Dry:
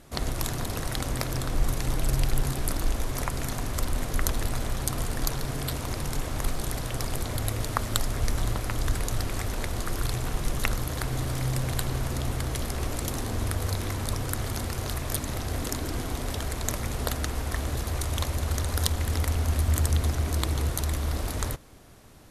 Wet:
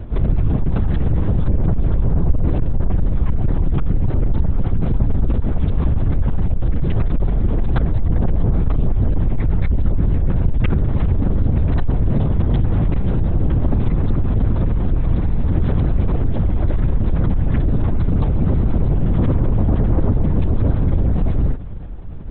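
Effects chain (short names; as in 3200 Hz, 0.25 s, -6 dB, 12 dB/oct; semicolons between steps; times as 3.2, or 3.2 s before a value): tilt -4.5 dB/oct; soft clip -19.5 dBFS, distortion -3 dB; LPC vocoder at 8 kHz whisper; gain +6 dB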